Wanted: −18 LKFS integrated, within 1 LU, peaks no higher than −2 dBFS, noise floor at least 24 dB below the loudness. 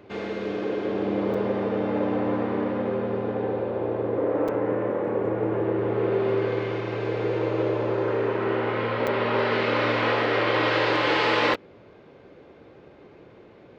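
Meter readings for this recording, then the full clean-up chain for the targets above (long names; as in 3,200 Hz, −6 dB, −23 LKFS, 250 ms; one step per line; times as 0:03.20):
number of dropouts 4; longest dropout 4.8 ms; integrated loudness −25.0 LKFS; sample peak −10.5 dBFS; target loudness −18.0 LKFS
→ repair the gap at 0:01.34/0:04.48/0:09.07/0:11.54, 4.8 ms
level +7 dB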